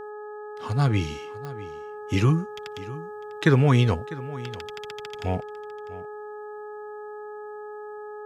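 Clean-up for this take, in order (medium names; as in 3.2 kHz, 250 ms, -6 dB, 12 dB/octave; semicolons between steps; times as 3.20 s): de-click; de-hum 420.9 Hz, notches 4; inverse comb 650 ms -17.5 dB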